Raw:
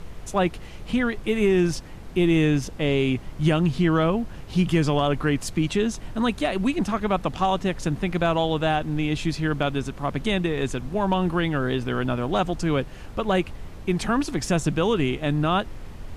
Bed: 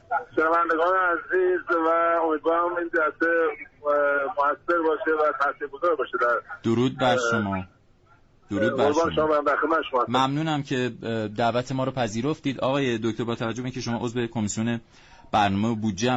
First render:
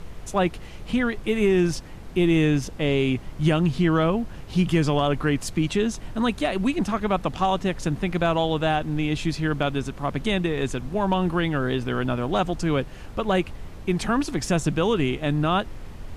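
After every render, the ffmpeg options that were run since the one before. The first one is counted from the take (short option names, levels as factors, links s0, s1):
-af anull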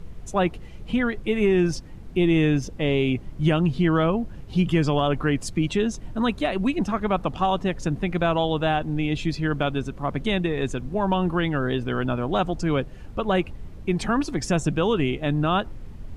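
-af "afftdn=nr=9:nf=-39"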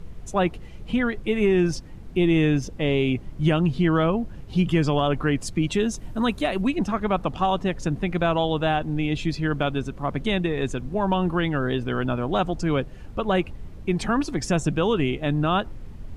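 -filter_complex "[0:a]asettb=1/sr,asplit=3[s0][s1][s2];[s0]atrim=end=5.714[s3];[s1]atrim=start=5.71:end=6.62,asetpts=PTS-STARTPTS,afade=t=in:d=0.004:c=qsin,afade=t=out:st=0.906:d=0.004:c=qsin,highshelf=f=9200:g=11[s4];[s2]atrim=start=6.616[s5];[s3][s4]acrossfade=d=0.004:c1=hsin:c2=qsin[s6];[s6][s5]acrossfade=d=0.004:c1=qsin:c2=hsin"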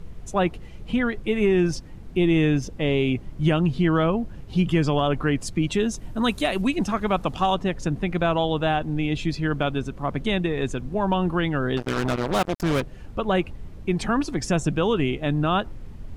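-filter_complex "[0:a]asettb=1/sr,asplit=3[s0][s1][s2];[s0]atrim=end=6.244[s3];[s1]atrim=start=6.24:end=7.55,asetpts=PTS-STARTPTS,afade=t=in:d=0.004:c=qsin,afade=t=out:st=1.306:d=0.004:c=qsin,highshelf=f=3400:g=8[s4];[s2]atrim=start=7.546[s5];[s3][s4]acrossfade=d=0.004:c1=hsin:c2=qsin[s6];[s6][s5]acrossfade=d=0.004:c1=qsin:c2=hsin,asettb=1/sr,asplit=3[s7][s8][s9];[s7]atrim=end=11.774[s10];[s8]atrim=start=11.77:end=12.82,asetpts=PTS-STARTPTS,afade=t=in:d=0.004:c=qsin,afade=t=out:st=1.046:d=0.004:c=qsin,acrusher=bits=3:mix=0:aa=0.5[s11];[s9]atrim=start=12.816[s12];[s10][s11]acrossfade=d=0.004:c1=hsin:c2=qsin[s13];[s13][s12]acrossfade=d=0.004:c1=qsin:c2=hsin"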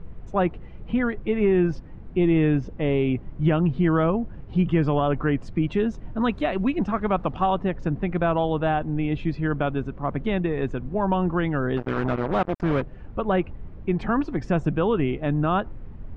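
-af "lowpass=1900"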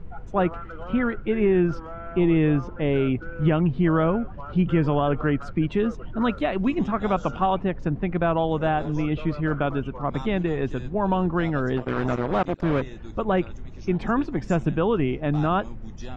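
-filter_complex "[1:a]volume=0.133[s0];[0:a][s0]amix=inputs=2:normalize=0"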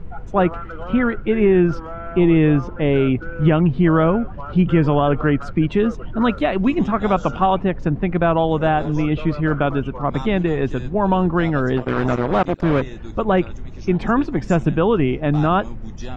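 -af "volume=1.88"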